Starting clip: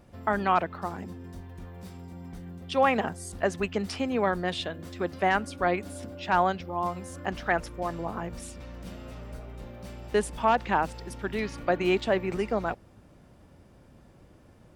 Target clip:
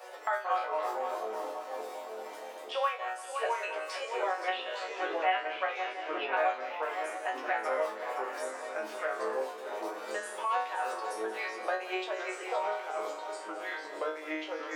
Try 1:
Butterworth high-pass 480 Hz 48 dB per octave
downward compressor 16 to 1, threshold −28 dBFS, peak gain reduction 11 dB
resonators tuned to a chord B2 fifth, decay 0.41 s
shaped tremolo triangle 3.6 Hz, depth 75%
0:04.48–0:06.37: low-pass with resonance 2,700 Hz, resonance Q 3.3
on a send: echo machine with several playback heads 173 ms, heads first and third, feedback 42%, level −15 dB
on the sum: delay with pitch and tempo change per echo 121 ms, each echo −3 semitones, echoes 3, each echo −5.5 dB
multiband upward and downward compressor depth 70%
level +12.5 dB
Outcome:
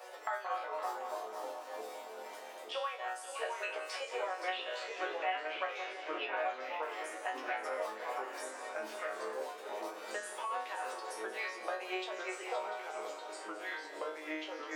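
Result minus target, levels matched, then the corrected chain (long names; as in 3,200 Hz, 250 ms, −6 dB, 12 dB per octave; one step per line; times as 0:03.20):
downward compressor: peak gain reduction +11 dB
Butterworth high-pass 480 Hz 48 dB per octave
resonators tuned to a chord B2 fifth, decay 0.41 s
shaped tremolo triangle 3.6 Hz, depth 75%
0:04.48–0:06.37: low-pass with resonance 2,700 Hz, resonance Q 3.3
on a send: echo machine with several playback heads 173 ms, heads first and third, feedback 42%, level −15 dB
on the sum: delay with pitch and tempo change per echo 121 ms, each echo −3 semitones, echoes 3, each echo −5.5 dB
multiband upward and downward compressor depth 70%
level +12.5 dB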